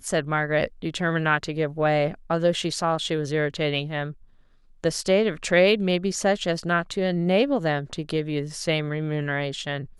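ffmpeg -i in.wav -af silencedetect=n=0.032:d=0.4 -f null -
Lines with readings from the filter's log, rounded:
silence_start: 4.11
silence_end: 4.84 | silence_duration: 0.73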